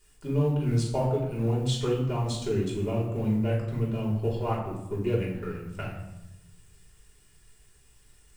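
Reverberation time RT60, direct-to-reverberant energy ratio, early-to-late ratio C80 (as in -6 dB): 0.90 s, -5.0 dB, 8.0 dB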